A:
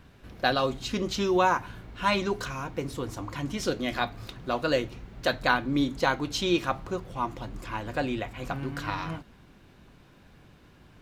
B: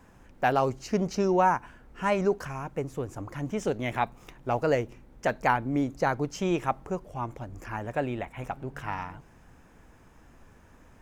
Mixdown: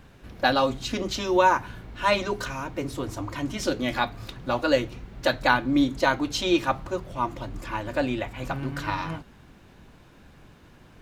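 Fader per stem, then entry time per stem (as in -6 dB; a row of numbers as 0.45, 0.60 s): +2.0, -3.0 dB; 0.00, 0.00 s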